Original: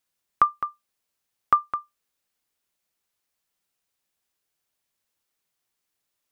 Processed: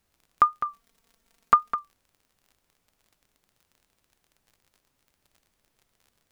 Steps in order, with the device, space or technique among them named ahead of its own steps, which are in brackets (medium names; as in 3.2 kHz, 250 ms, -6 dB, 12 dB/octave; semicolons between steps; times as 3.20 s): vinyl LP (wow and flutter; crackle 32 per s -46 dBFS; pink noise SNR 42 dB); 0.65–1.75 s: comb 4.4 ms, depth 85%